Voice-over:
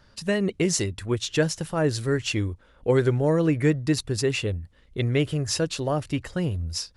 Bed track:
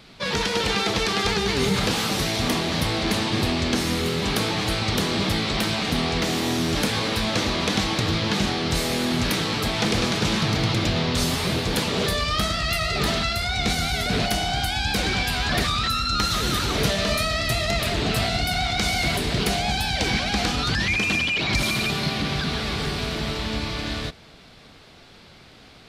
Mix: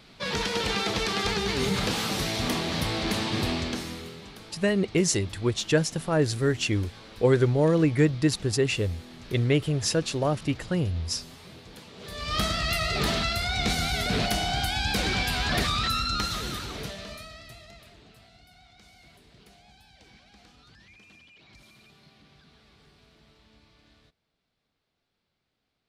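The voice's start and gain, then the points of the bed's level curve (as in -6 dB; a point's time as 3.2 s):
4.35 s, 0.0 dB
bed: 3.54 s -4.5 dB
4.38 s -23 dB
11.97 s -23 dB
12.37 s -3 dB
16 s -3 dB
18.18 s -32 dB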